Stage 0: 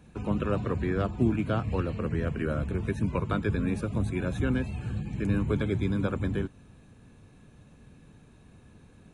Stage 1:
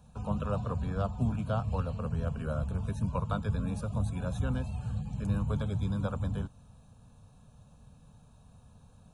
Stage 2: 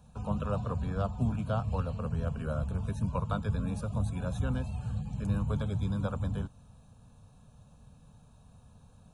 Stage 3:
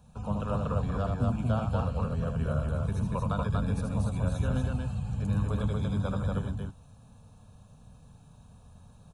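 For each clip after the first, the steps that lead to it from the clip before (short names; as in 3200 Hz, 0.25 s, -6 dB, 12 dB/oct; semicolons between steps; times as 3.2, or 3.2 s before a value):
fixed phaser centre 830 Hz, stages 4
nothing audible
loudspeakers at several distances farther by 27 m -5 dB, 81 m -2 dB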